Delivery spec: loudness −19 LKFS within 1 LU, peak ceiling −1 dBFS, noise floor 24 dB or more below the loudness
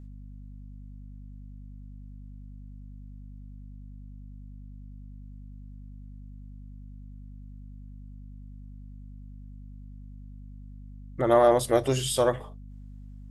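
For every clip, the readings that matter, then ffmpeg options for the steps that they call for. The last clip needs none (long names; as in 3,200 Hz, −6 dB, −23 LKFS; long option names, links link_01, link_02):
mains hum 50 Hz; hum harmonics up to 250 Hz; level of the hum −41 dBFS; integrated loudness −24.0 LKFS; sample peak −8.5 dBFS; target loudness −19.0 LKFS
→ -af "bandreject=frequency=50:width_type=h:width=6,bandreject=frequency=100:width_type=h:width=6,bandreject=frequency=150:width_type=h:width=6,bandreject=frequency=200:width_type=h:width=6,bandreject=frequency=250:width_type=h:width=6"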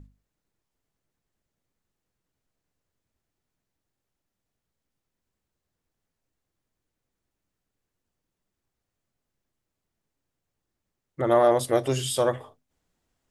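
mains hum none found; integrated loudness −23.5 LKFS; sample peak −8.5 dBFS; target loudness −19.0 LKFS
→ -af "volume=4.5dB"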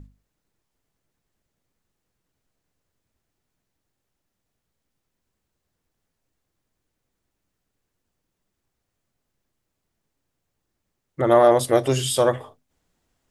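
integrated loudness −19.0 LKFS; sample peak −4.0 dBFS; background noise floor −80 dBFS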